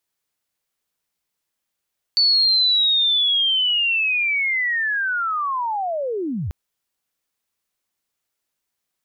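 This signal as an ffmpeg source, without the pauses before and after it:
-f lavfi -i "aevalsrc='pow(10,(-13-9.5*t/4.34)/20)*sin(2*PI*(4500*t-4437*t*t/(2*4.34)))':d=4.34:s=44100"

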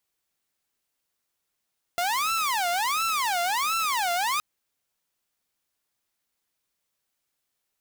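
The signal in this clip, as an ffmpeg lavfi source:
-f lavfi -i "aevalsrc='0.0891*(2*mod((1016*t-324/(2*PI*1.4)*sin(2*PI*1.4*t)),1)-1)':d=2.42:s=44100"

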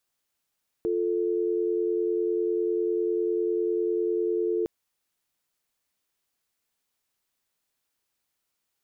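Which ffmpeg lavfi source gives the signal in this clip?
-f lavfi -i "aevalsrc='0.0501*(sin(2*PI*350*t)+sin(2*PI*440*t))':d=3.81:s=44100"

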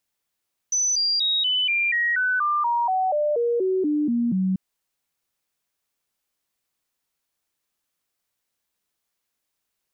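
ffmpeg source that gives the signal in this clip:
-f lavfi -i "aevalsrc='0.112*clip(min(mod(t,0.24),0.24-mod(t,0.24))/0.005,0,1)*sin(2*PI*6010*pow(2,-floor(t/0.24)/3)*mod(t,0.24))':d=3.84:s=44100"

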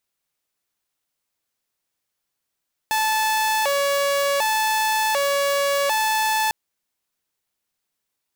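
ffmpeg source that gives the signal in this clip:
-f lavfi -i "aevalsrc='0.158*(2*mod((717.5*t+154.5/0.67*(0.5-abs(mod(0.67*t,1)-0.5))),1)-1)':d=3.6:s=44100"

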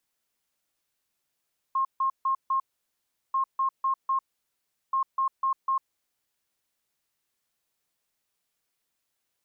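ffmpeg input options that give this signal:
-f lavfi -i "aevalsrc='0.0794*sin(2*PI*1070*t)*clip(min(mod(mod(t,1.59),0.25),0.1-mod(mod(t,1.59),0.25))/0.005,0,1)*lt(mod(t,1.59),1)':d=4.77:s=44100"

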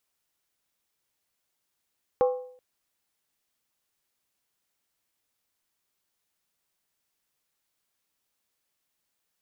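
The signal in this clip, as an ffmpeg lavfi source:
-f lavfi -i "aevalsrc='0.15*pow(10,-3*t/0.59)*sin(2*PI*503*t)+0.0596*pow(10,-3*t/0.467)*sin(2*PI*801.8*t)+0.0237*pow(10,-3*t/0.404)*sin(2*PI*1074.4*t)+0.00944*pow(10,-3*t/0.389)*sin(2*PI*1154.9*t)+0.00376*pow(10,-3*t/0.362)*sin(2*PI*1334.5*t)':d=0.38:s=44100"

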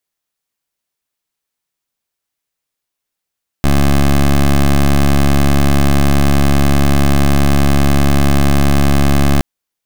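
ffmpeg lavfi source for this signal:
-f lavfi -i "aevalsrc='0.335*(2*lt(mod(70.4*t,1),0.15)-1)':d=5.77:s=44100"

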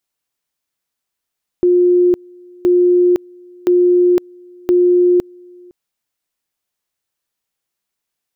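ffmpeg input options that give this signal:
-f lavfi -i "aevalsrc='pow(10,(-8-29*gte(mod(t,1.02),0.51))/20)*sin(2*PI*356*t)':d=4.08:s=44100"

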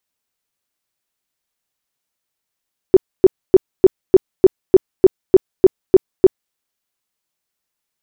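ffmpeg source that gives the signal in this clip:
-f lavfi -i "aevalsrc='0.794*sin(2*PI*377*mod(t,0.3))*lt(mod(t,0.3),10/377)':d=3.6:s=44100"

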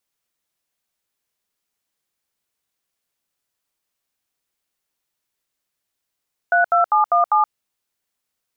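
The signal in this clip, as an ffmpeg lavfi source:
-f lavfi -i "aevalsrc='0.178*clip(min(mod(t,0.199),0.124-mod(t,0.199))/0.002,0,1)*(eq(floor(t/0.199),0)*(sin(2*PI*697*mod(t,0.199))+sin(2*PI*1477*mod(t,0.199)))+eq(floor(t/0.199),1)*(sin(2*PI*697*mod(t,0.199))+sin(2*PI*1336*mod(t,0.199)))+eq(floor(t/0.199),2)*(sin(2*PI*852*mod(t,0.199))+sin(2*PI*1209*mod(t,0.199)))+eq(floor(t/0.199),3)*(sin(2*PI*697*mod(t,0.199))+sin(2*PI*1209*mod(t,0.199)))+eq(floor(t/0.199),4)*(sin(2*PI*852*mod(t,0.199))+sin(2*PI*1209*mod(t,0.199))))':d=0.995:s=44100"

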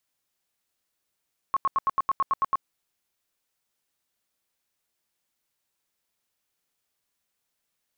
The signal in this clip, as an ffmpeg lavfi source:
-f lavfi -i "aevalsrc='0.112*sin(2*PI*1090*mod(t,0.11))*lt(mod(t,0.11),28/1090)':d=1.1:s=44100"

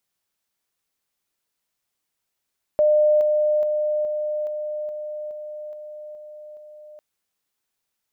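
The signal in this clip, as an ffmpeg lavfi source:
-f lavfi -i "aevalsrc='pow(10,(-13.5-3*floor(t/0.42))/20)*sin(2*PI*604*t)':d=4.2:s=44100"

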